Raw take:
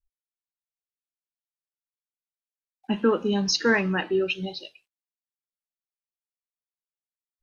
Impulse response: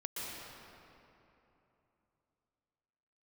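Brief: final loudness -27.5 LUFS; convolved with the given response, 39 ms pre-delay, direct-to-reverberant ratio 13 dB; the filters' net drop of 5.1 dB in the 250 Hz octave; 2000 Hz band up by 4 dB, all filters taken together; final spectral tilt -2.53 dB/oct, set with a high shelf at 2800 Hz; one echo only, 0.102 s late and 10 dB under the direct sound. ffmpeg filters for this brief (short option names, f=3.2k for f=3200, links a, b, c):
-filter_complex "[0:a]equalizer=f=250:t=o:g=-7,equalizer=f=2k:t=o:g=3.5,highshelf=f=2.8k:g=4.5,aecho=1:1:102:0.316,asplit=2[a][b];[1:a]atrim=start_sample=2205,adelay=39[c];[b][c]afir=irnorm=-1:irlink=0,volume=-15dB[d];[a][d]amix=inputs=2:normalize=0,volume=-4.5dB"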